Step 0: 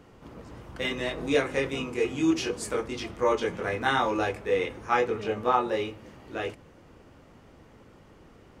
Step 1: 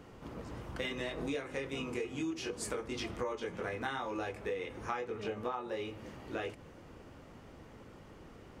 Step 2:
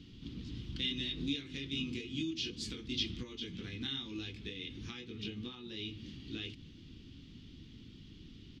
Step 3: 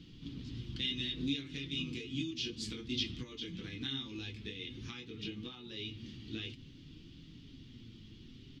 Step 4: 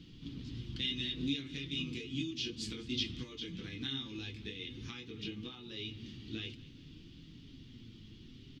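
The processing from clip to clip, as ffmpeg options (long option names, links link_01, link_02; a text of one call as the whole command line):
ffmpeg -i in.wav -af "acompressor=threshold=-34dB:ratio=12" out.wav
ffmpeg -i in.wav -af "firequalizer=gain_entry='entry(280,0);entry(570,-30);entry(3400,10);entry(8700,-17)':delay=0.05:min_phase=1,volume=2.5dB" out.wav
ffmpeg -i in.wav -af "flanger=delay=5.9:depth=3.3:regen=48:speed=0.56:shape=triangular,volume=4dB" out.wav
ffmpeg -i in.wav -af "aecho=1:1:204|408|612|816:0.0944|0.0481|0.0246|0.0125" out.wav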